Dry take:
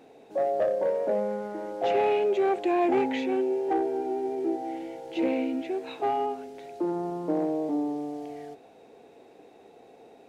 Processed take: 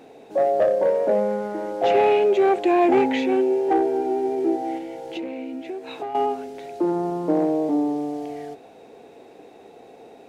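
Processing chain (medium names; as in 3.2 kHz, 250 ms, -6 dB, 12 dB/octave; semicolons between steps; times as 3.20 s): 4.77–6.15 s: compression 6:1, threshold -36 dBFS, peak gain reduction 13 dB; trim +6.5 dB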